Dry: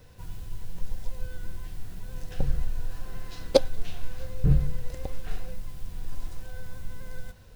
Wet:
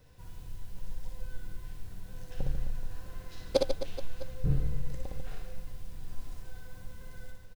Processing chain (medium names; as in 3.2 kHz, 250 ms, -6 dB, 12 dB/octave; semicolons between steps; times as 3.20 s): reverse bouncing-ball echo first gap 60 ms, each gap 1.4×, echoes 5; trim -7.5 dB